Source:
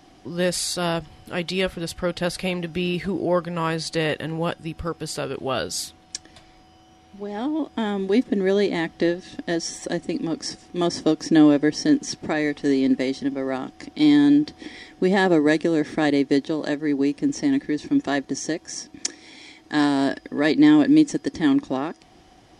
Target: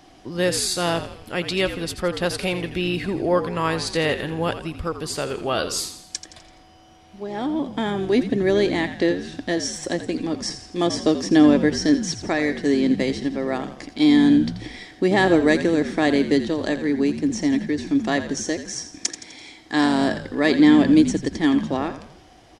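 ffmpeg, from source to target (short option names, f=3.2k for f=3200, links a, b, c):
-filter_complex "[0:a]equalizer=f=180:w=0.91:g=-3,asplit=6[a][b][c][d][e][f];[b]adelay=84,afreqshift=-59,volume=-11dB[g];[c]adelay=168,afreqshift=-118,volume=-17.4dB[h];[d]adelay=252,afreqshift=-177,volume=-23.8dB[i];[e]adelay=336,afreqshift=-236,volume=-30.1dB[j];[f]adelay=420,afreqshift=-295,volume=-36.5dB[k];[a][g][h][i][j][k]amix=inputs=6:normalize=0,volume=2dB"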